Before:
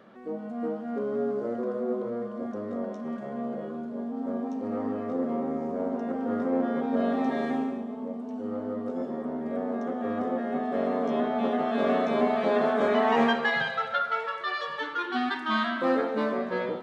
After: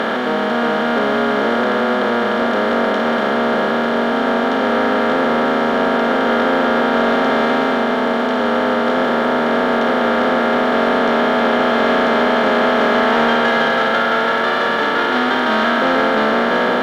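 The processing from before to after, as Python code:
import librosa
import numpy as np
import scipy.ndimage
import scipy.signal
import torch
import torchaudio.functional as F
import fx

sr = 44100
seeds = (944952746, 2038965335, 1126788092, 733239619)

y = fx.bin_compress(x, sr, power=0.2)
y = fx.low_shelf(y, sr, hz=69.0, db=-12.0)
y = fx.leveller(y, sr, passes=1)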